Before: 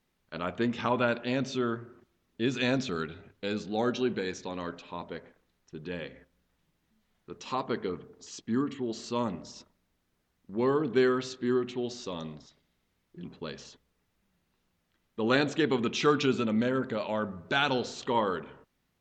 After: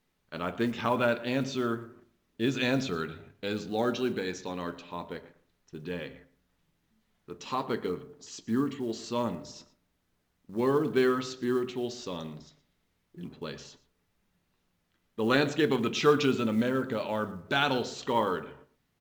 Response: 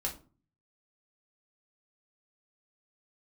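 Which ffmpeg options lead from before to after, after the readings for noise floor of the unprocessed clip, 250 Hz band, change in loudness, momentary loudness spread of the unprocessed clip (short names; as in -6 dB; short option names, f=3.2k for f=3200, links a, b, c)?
-77 dBFS, +0.5 dB, +0.5 dB, 17 LU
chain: -filter_complex "[0:a]acrusher=bits=8:mode=log:mix=0:aa=0.000001,asplit=2[a][b];[b]adelay=116.6,volume=-18dB,highshelf=f=4k:g=-2.62[c];[a][c]amix=inputs=2:normalize=0,asplit=2[d][e];[1:a]atrim=start_sample=2205,asetrate=48510,aresample=44100,adelay=7[f];[e][f]afir=irnorm=-1:irlink=0,volume=-13dB[g];[d][g]amix=inputs=2:normalize=0"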